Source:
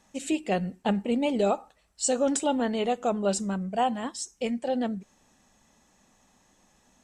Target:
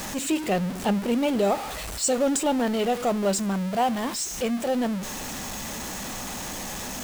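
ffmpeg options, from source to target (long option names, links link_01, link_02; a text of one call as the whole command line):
ffmpeg -i in.wav -af "aeval=exprs='val(0)+0.5*0.0398*sgn(val(0))':channel_layout=same" out.wav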